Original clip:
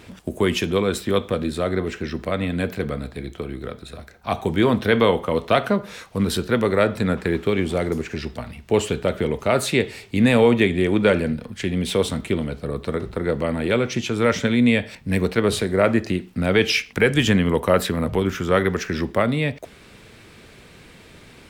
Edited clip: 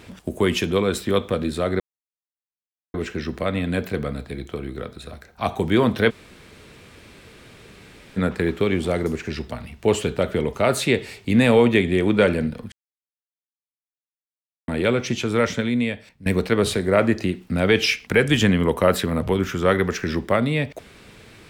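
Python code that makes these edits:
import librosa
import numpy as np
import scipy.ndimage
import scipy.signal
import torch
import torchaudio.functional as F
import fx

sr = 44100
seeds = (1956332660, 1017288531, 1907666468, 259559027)

y = fx.edit(x, sr, fx.insert_silence(at_s=1.8, length_s=1.14),
    fx.room_tone_fill(start_s=4.96, length_s=2.07, crossfade_s=0.02),
    fx.silence(start_s=11.58, length_s=1.96),
    fx.fade_out_to(start_s=14.12, length_s=1.0, floor_db=-17.0), tone=tone)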